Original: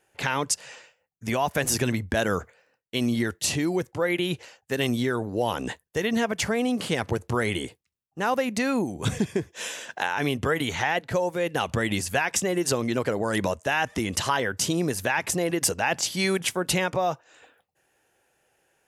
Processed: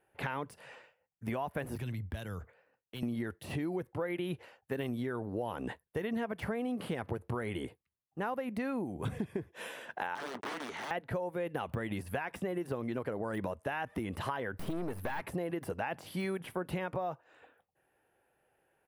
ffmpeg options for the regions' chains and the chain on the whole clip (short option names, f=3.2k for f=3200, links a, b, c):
-filter_complex "[0:a]asettb=1/sr,asplit=3[a][b][c];[a]atrim=end=1.754[d];[b]atrim=start=1.75:end=3.03,asetpts=PTS-STARTPTS,afade=t=in:d=0.004:c=qsin,afade=t=out:st=1.276:d=0.004:c=qsin,acrossover=split=130|3000[e][f][g];[f]acompressor=threshold=-44dB:ratio=3:attack=3.2:release=140:knee=2.83:detection=peak[h];[e][h][g]amix=inputs=3:normalize=0,aeval=exprs='0.0631*(abs(mod(val(0)/0.0631+3,4)-2)-1)':c=same,equalizer=f=10k:w=1.9:g=-5.5[i];[c]atrim=start=3.026[j];[d][i]acrossfade=d=0.004:c1=hsin:c2=qsin[k];[k][j]acrossfade=d=0.004:c1=qsin:c2=hsin,asettb=1/sr,asplit=3[l][m][n];[l]atrim=end=10.154[o];[m]atrim=start=10.15:end=10.91,asetpts=PTS-STARTPTS,afade=t=in:d=0.004:c=qsin,afade=t=out:st=0.756:d=0.004:c=qsin,acrusher=bits=5:mix=0:aa=0.5,aeval=exprs='(mod(12.6*val(0)+1,2)-1)/12.6':c=same,highpass=350,equalizer=f=530:t=q:w=4:g=-6,equalizer=f=800:t=q:w=4:g=-3,equalizer=f=2.4k:t=q:w=4:g=-4,equalizer=f=6.1k:t=q:w=4:g=6,lowpass=f=7.8k:w=0.5412,lowpass=f=7.8k:w=1.3066[p];[n]atrim=start=10.906[q];[o][p]acrossfade=d=0.004:c1=hsin:c2=qsin[r];[r][q]acrossfade=d=0.004:c1=qsin:c2=hsin,asettb=1/sr,asplit=3[s][t][u];[s]atrim=end=14.534[v];[t]atrim=start=14.53:end=15.24,asetpts=PTS-STARTPTS,afade=t=in:d=0.004:c=qsin,afade=t=out:st=0.706:d=0.004:c=qsin,acontrast=51,aeval=exprs='(tanh(12.6*val(0)+0.75)-tanh(0.75))/12.6':c=same[w];[u]atrim=start=15.236[x];[v][w]acrossfade=d=0.004:c1=hsin:c2=qsin[y];[y][x]acrossfade=d=0.004:c1=qsin:c2=hsin,deesser=0.65,firequalizer=gain_entry='entry(970,0);entry(6700,-21);entry(10000,-5)':delay=0.05:min_phase=1,acompressor=threshold=-28dB:ratio=6,volume=-4dB"